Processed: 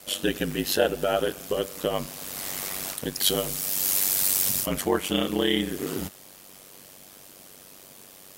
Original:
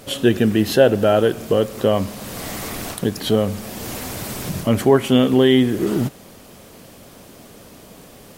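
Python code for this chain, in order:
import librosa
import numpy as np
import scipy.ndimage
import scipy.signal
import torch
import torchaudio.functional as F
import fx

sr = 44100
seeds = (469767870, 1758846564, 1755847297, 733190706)

y = fx.tilt_eq(x, sr, slope=2.5)
y = y * np.sin(2.0 * np.pi * 48.0 * np.arange(len(y)) / sr)
y = fx.high_shelf(y, sr, hz=3300.0, db=10.5, at=(3.2, 4.66))
y = y * librosa.db_to_amplitude(-4.5)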